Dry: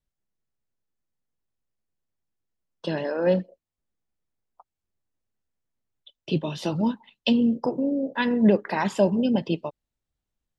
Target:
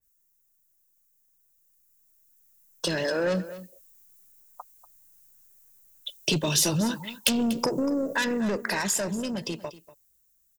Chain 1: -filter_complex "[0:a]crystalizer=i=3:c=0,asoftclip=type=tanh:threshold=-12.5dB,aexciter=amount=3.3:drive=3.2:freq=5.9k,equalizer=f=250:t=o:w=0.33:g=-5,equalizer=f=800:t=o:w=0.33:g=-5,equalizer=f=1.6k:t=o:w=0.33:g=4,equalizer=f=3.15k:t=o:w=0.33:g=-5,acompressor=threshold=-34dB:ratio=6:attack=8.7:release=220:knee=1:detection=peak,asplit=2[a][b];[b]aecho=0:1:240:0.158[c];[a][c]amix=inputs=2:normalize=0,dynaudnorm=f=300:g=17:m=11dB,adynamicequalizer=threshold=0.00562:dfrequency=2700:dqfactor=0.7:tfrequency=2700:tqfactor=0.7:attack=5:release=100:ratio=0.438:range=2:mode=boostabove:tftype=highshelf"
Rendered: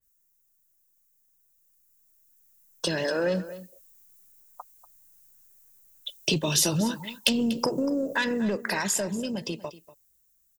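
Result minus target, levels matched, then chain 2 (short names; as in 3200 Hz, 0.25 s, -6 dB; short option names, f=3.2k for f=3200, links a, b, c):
soft clip: distortion -8 dB
-filter_complex "[0:a]crystalizer=i=3:c=0,asoftclip=type=tanh:threshold=-19.5dB,aexciter=amount=3.3:drive=3.2:freq=5.9k,equalizer=f=250:t=o:w=0.33:g=-5,equalizer=f=800:t=o:w=0.33:g=-5,equalizer=f=1.6k:t=o:w=0.33:g=4,equalizer=f=3.15k:t=o:w=0.33:g=-5,acompressor=threshold=-34dB:ratio=6:attack=8.7:release=220:knee=1:detection=peak,asplit=2[a][b];[b]aecho=0:1:240:0.158[c];[a][c]amix=inputs=2:normalize=0,dynaudnorm=f=300:g=17:m=11dB,adynamicequalizer=threshold=0.00562:dfrequency=2700:dqfactor=0.7:tfrequency=2700:tqfactor=0.7:attack=5:release=100:ratio=0.438:range=2:mode=boostabove:tftype=highshelf"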